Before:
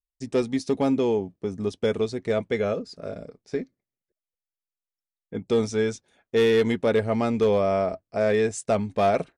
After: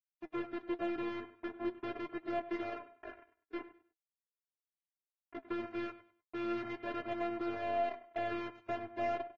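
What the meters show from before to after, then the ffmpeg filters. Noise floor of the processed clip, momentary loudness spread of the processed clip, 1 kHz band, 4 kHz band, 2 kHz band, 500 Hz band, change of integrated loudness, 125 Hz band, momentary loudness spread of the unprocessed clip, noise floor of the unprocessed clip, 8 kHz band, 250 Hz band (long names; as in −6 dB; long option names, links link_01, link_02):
below −85 dBFS, 12 LU, −9.0 dB, −16.5 dB, −11.0 dB, −17.0 dB, −15.0 dB, −24.0 dB, 13 LU, below −85 dBFS, below −30 dB, −13.0 dB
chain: -filter_complex "[0:a]acrusher=bits=3:mix=0:aa=0.5,aeval=exprs='(tanh(89.1*val(0)+0.05)-tanh(0.05))/89.1':channel_layout=same,lowpass=frequency=2400:width=0.5412,lowpass=frequency=2400:width=1.3066,afftfilt=real='hypot(re,im)*cos(PI*b)':imag='0':win_size=512:overlap=0.75,acontrast=44,highpass=frequency=110:poles=1,asplit=2[link_01][link_02];[link_02]aecho=0:1:100|200|300:0.2|0.0519|0.0135[link_03];[link_01][link_03]amix=inputs=2:normalize=0,aeval=exprs='0.0422*(cos(1*acos(clip(val(0)/0.0422,-1,1)))-cos(1*PI/2))+0.000668*(cos(6*acos(clip(val(0)/0.0422,-1,1)))-cos(6*PI/2))+0.0015*(cos(8*acos(clip(val(0)/0.0422,-1,1)))-cos(8*PI/2))':channel_layout=same,flanger=delay=5.9:depth=3.8:regen=58:speed=0.41:shape=sinusoidal,volume=8dB" -ar 44100 -c:a aac -b:a 24k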